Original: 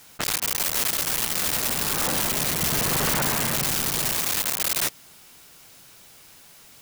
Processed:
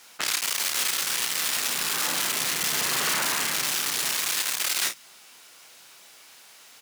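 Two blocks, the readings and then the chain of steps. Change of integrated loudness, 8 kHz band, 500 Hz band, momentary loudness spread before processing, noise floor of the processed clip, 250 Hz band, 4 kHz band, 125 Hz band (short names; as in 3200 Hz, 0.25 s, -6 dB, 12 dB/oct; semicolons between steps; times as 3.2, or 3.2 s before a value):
-1.5 dB, -0.5 dB, -7.0 dB, 2 LU, -51 dBFS, -9.5 dB, +1.5 dB, -14.5 dB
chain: weighting filter A; early reflections 32 ms -7 dB, 50 ms -12.5 dB; dynamic EQ 640 Hz, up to -6 dB, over -46 dBFS, Q 0.98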